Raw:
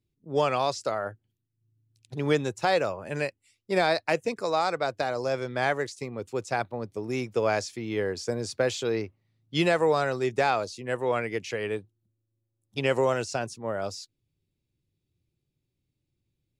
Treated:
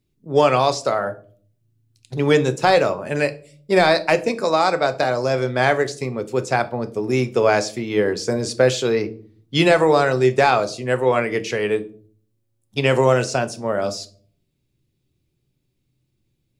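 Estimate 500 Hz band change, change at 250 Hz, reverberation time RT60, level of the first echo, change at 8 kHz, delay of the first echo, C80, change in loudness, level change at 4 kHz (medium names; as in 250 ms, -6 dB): +9.0 dB, +9.0 dB, 0.50 s, no echo, +8.5 dB, no echo, 22.5 dB, +9.0 dB, +8.5 dB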